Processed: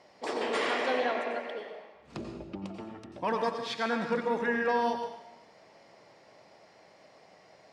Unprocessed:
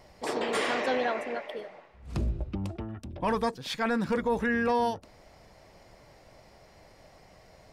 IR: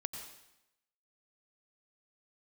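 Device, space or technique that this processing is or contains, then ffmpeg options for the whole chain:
supermarket ceiling speaker: -filter_complex "[0:a]highpass=240,lowpass=6300[link_01];[1:a]atrim=start_sample=2205[link_02];[link_01][link_02]afir=irnorm=-1:irlink=0"

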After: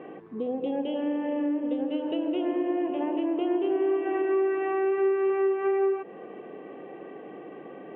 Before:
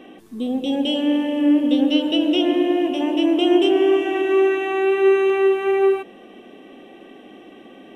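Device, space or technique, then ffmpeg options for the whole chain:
bass amplifier: -af "acompressor=threshold=-26dB:ratio=4,highpass=76,equalizer=frequency=96:width_type=q:width=4:gain=-7,equalizer=frequency=150:width_type=q:width=4:gain=8,equalizer=frequency=240:width_type=q:width=4:gain=-8,equalizer=frequency=460:width_type=q:width=4:gain=7,equalizer=frequency=1000:width_type=q:width=4:gain=5,lowpass=frequency=2100:width=0.5412,lowpass=frequency=2100:width=1.3066"

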